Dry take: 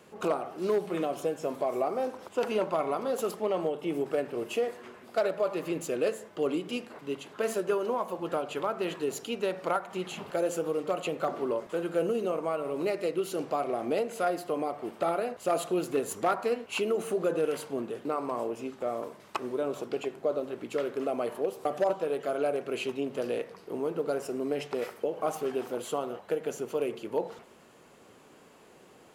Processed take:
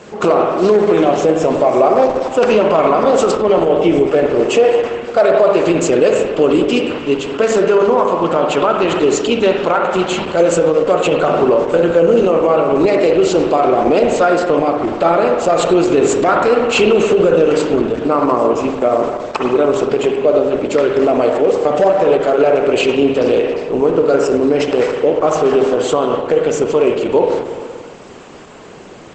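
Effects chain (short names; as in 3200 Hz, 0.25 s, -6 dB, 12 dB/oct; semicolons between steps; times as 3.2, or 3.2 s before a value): 2.56–2.96 de-hum 419.2 Hz, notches 15; spring tank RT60 1.7 s, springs 47/57 ms, chirp 60 ms, DRR 4 dB; 4.46–5.52 dynamic EQ 730 Hz, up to +4 dB, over -39 dBFS, Q 1.1; 22.73–23.6 upward compressor, threshold -47 dBFS; maximiser +20.5 dB; gain -1.5 dB; Opus 12 kbps 48000 Hz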